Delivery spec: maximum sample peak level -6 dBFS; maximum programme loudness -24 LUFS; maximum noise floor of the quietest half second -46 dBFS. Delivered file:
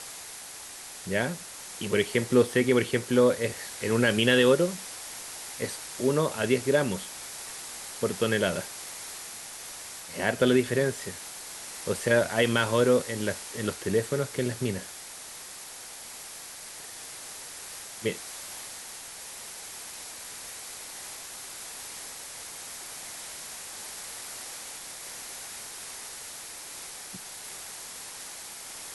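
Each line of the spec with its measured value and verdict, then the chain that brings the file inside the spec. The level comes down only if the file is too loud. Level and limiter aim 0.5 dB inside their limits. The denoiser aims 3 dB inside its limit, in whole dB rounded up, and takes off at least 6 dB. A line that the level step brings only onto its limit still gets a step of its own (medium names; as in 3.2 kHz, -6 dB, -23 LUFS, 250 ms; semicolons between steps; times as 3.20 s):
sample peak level -8.5 dBFS: pass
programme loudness -30.0 LUFS: pass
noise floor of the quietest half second -43 dBFS: fail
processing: noise reduction 6 dB, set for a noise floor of -43 dBFS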